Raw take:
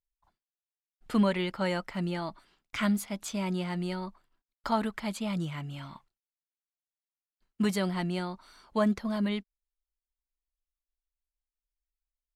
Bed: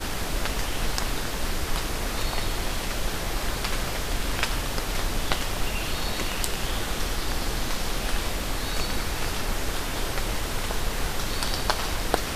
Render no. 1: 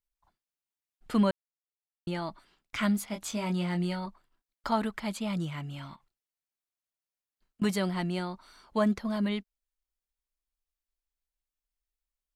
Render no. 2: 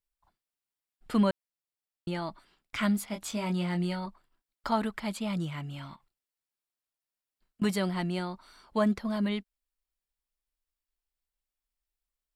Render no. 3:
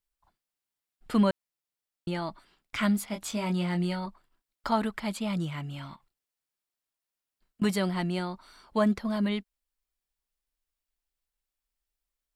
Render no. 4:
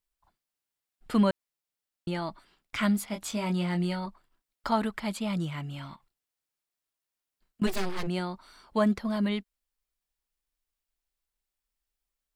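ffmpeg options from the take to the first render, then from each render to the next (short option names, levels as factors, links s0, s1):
-filter_complex "[0:a]asettb=1/sr,asplit=3[s0][s1][s2];[s0]atrim=end=3.064[s3];[s1]atrim=start=3.06:end=4.06,asetpts=PTS-STARTPTS,afade=t=in:d=0.004:c=qsin,afade=t=out:st=0.996:d=0.004:c=qsin,asplit=2[s4][s5];[s5]adelay=23,volume=0.531[s6];[s4][s6]amix=inputs=2:normalize=0,atrim=end_sample=44100[s7];[s2]atrim=start=4.056[s8];[s3][s7]acrossfade=d=0.004:c1=hsin:c2=qsin[s9];[s9][s8]acrossfade=d=0.004:c1=qsin:c2=hsin,asettb=1/sr,asplit=3[s10][s11][s12];[s10]atrim=end=5.954[s13];[s11]atrim=start=5.95:end=7.62,asetpts=PTS-STARTPTS,afade=t=in:d=0.004:c=qsin,afade=t=out:st=1.666:d=0.004:c=qsin,acompressor=threshold=0.00224:ratio=6:attack=3.2:release=140:knee=1:detection=peak[s14];[s12]atrim=start=7.616[s15];[s13][s14]acrossfade=d=0.004:c1=hsin:c2=qsin[s16];[s16][s15]acrossfade=d=0.004:c1=qsin:c2=hsin,asplit=3[s17][s18][s19];[s17]atrim=end=1.31,asetpts=PTS-STARTPTS,afade=t=out:st=1.306:d=0.004:c=hsin[s20];[s18]atrim=start=1.31:end=2.07,asetpts=PTS-STARTPTS,volume=0[s21];[s19]atrim=start=2.07,asetpts=PTS-STARTPTS,afade=t=in:d=0.004:c=hsin[s22];[s20][s21][s22]concat=n=3:v=0:a=1"
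-af "bandreject=f=6300:w=11"
-af "volume=1.19"
-filter_complex "[0:a]asplit=3[s0][s1][s2];[s0]afade=t=out:st=7.66:d=0.02[s3];[s1]aeval=exprs='abs(val(0))':c=same,afade=t=in:st=7.66:d=0.02,afade=t=out:st=8.06:d=0.02[s4];[s2]afade=t=in:st=8.06:d=0.02[s5];[s3][s4][s5]amix=inputs=3:normalize=0"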